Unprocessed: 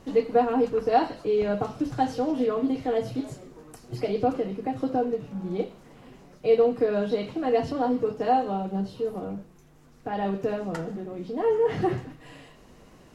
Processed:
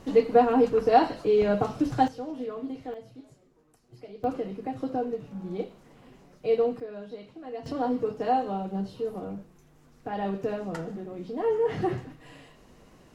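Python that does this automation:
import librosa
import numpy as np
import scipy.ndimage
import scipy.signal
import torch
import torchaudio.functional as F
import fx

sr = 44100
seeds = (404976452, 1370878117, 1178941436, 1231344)

y = fx.gain(x, sr, db=fx.steps((0.0, 2.0), (2.08, -9.5), (2.94, -17.0), (4.24, -4.0), (6.8, -14.5), (7.66, -2.5)))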